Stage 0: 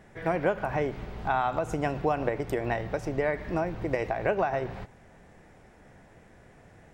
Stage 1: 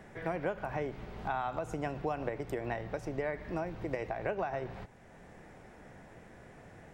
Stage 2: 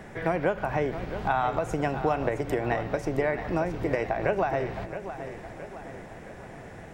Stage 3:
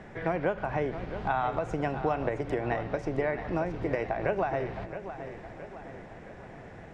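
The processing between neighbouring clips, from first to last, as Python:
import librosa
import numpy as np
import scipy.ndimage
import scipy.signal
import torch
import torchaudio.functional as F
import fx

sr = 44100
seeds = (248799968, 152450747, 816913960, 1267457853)

y1 = fx.band_squash(x, sr, depth_pct=40)
y1 = F.gain(torch.from_numpy(y1), -7.5).numpy()
y2 = fx.echo_feedback(y1, sr, ms=669, feedback_pct=51, wet_db=-11.0)
y2 = F.gain(torch.from_numpy(y2), 8.5).numpy()
y3 = fx.air_absorb(y2, sr, metres=89.0)
y3 = F.gain(torch.from_numpy(y3), -2.5).numpy()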